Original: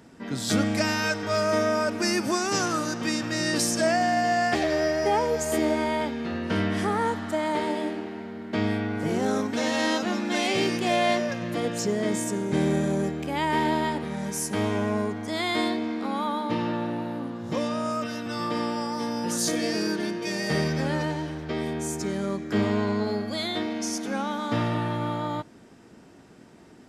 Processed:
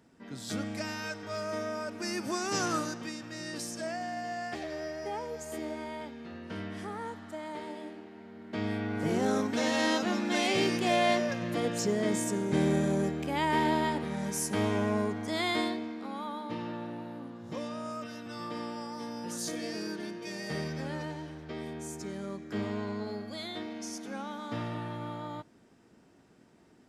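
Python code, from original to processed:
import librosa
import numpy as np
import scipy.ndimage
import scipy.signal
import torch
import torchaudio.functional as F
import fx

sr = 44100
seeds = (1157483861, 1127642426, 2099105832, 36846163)

y = fx.gain(x, sr, db=fx.line((1.93, -11.5), (2.76, -3.5), (3.14, -13.5), (8.1, -13.5), (9.05, -3.0), (15.49, -3.0), (15.94, -10.0)))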